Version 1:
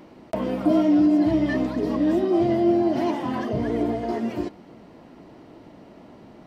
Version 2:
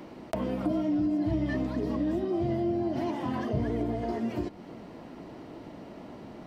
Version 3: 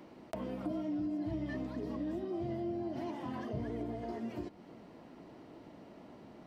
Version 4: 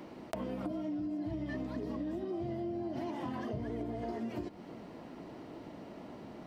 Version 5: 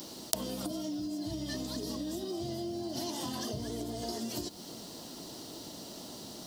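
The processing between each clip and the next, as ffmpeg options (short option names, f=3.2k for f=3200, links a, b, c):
-filter_complex "[0:a]acrossover=split=140[a][b];[b]acompressor=threshold=-34dB:ratio=3[c];[a][c]amix=inputs=2:normalize=0,volume=2dB"
-af "lowshelf=f=71:g=-5,volume=-8.5dB"
-af "acompressor=threshold=-40dB:ratio=6,volume=5.5dB"
-af "aexciter=amount=8.3:drive=9:freq=3.5k"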